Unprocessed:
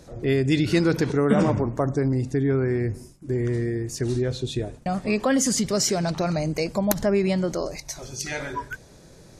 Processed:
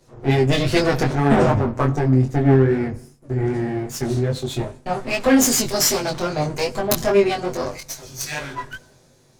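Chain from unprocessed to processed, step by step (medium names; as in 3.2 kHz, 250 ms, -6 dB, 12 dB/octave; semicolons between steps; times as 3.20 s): comb filter that takes the minimum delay 7.9 ms; chorus 2.5 Hz, delay 20 ms, depth 3.1 ms; on a send at -23.5 dB: reverberation RT60 0.70 s, pre-delay 72 ms; on the sum: three bands expanded up and down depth 40%; trim +8 dB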